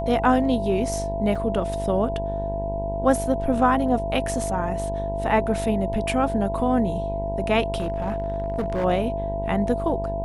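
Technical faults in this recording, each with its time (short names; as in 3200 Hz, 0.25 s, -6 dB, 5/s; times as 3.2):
buzz 50 Hz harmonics 20 -30 dBFS
tone 670 Hz -27 dBFS
1.35 gap 4.5 ms
7.75–8.85 clipped -20.5 dBFS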